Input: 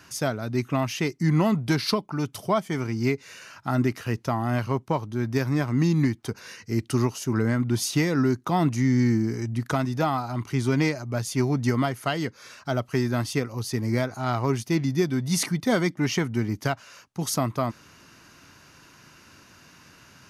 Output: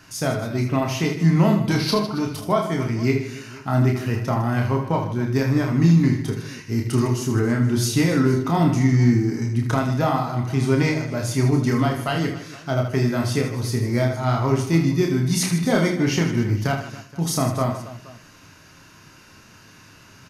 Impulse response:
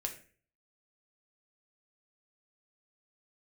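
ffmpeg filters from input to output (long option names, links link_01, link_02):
-filter_complex "[0:a]aecho=1:1:30|78|154.8|277.7|474.3:0.631|0.398|0.251|0.158|0.1,asplit=2[link_01][link_02];[1:a]atrim=start_sample=2205,lowshelf=frequency=220:gain=6.5[link_03];[link_02][link_03]afir=irnorm=-1:irlink=0,volume=3dB[link_04];[link_01][link_04]amix=inputs=2:normalize=0,volume=-6.5dB"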